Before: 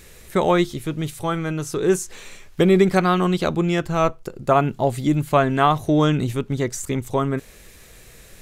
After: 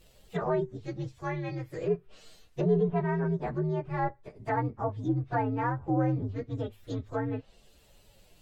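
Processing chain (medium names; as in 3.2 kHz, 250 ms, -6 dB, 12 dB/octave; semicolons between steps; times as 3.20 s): frequency axis rescaled in octaves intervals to 125%; low-pass that closes with the level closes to 1.1 kHz, closed at -18 dBFS; trim -8 dB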